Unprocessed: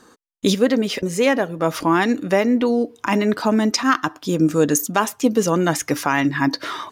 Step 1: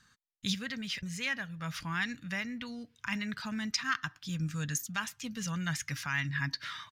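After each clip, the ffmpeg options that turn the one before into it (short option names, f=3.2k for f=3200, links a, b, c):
-af "firequalizer=gain_entry='entry(140,0);entry(330,-30);entry(1600,-3);entry(4300,-3);entry(9600,-11)':delay=0.05:min_phase=1,volume=-6dB"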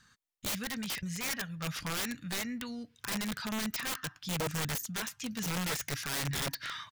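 -af "aeval=exprs='(mod(31.6*val(0)+1,2)-1)/31.6':c=same,volume=1.5dB"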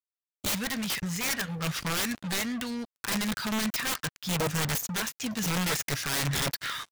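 -af "acrusher=bits=6:mix=0:aa=0.5,volume=5.5dB"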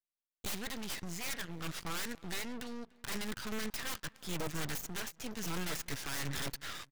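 -filter_complex "[0:a]asplit=2[a][b];[b]adelay=292,lowpass=f=2.6k:p=1,volume=-23dB,asplit=2[c][d];[d]adelay=292,lowpass=f=2.6k:p=1,volume=0.41,asplit=2[e][f];[f]adelay=292,lowpass=f=2.6k:p=1,volume=0.41[g];[a][c][e][g]amix=inputs=4:normalize=0,aeval=exprs='max(val(0),0)':c=same,volume=-5.5dB"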